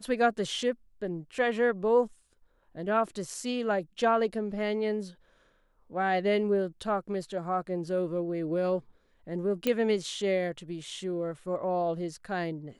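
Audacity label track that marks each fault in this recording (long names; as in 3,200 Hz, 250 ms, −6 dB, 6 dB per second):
9.670000	9.670000	click −14 dBFS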